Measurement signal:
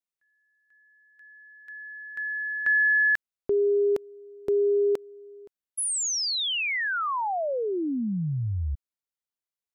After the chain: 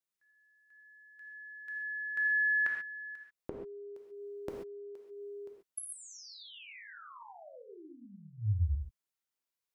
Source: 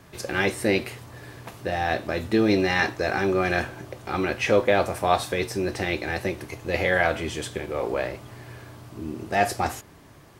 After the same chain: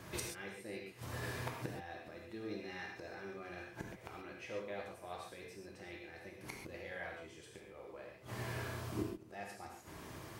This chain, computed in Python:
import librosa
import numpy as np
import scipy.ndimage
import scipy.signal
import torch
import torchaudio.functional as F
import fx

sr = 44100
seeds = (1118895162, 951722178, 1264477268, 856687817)

y = fx.low_shelf(x, sr, hz=77.0, db=-6.0)
y = fx.gate_flip(y, sr, shuts_db=-26.0, range_db=-25)
y = fx.rev_gated(y, sr, seeds[0], gate_ms=160, shape='flat', drr_db=-0.5)
y = F.gain(torch.from_numpy(y), -1.5).numpy()